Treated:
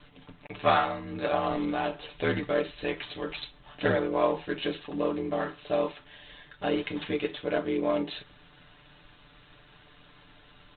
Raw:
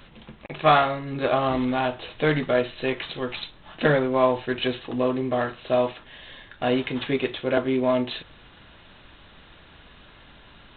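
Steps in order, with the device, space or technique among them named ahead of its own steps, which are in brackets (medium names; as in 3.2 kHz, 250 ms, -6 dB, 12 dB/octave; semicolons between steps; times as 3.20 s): ring-modulated robot voice (ring modulator 41 Hz; comb 6.8 ms, depth 74%); trim -4.5 dB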